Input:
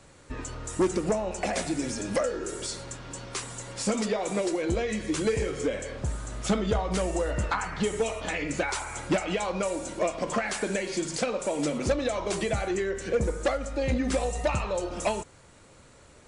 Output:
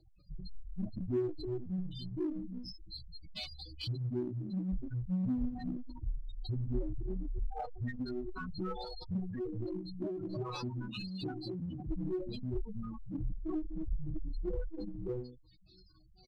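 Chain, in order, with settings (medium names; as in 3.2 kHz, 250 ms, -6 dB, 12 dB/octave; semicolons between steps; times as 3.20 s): high-pass 72 Hz 6 dB/octave; tone controls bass +10 dB, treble +6 dB; on a send: feedback echo behind a high-pass 687 ms, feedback 77%, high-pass 3.6 kHz, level -22 dB; on the sum: spectral selection erased 2.18–2.86 s, 700–8500 Hz; pitch shift -9.5 st; chord resonator B2 major, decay 0.42 s; chorus voices 6, 0.4 Hz, delay 25 ms, depth 3.3 ms; de-hum 156.8 Hz, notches 4; spectral gate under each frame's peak -10 dB strong; dynamic bell 150 Hz, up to -7 dB, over -59 dBFS, Q 2.7; in parallel at -7 dB: one-sided clip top -54.5 dBFS, bottom -44.5 dBFS; on the sum: trim +8.5 dB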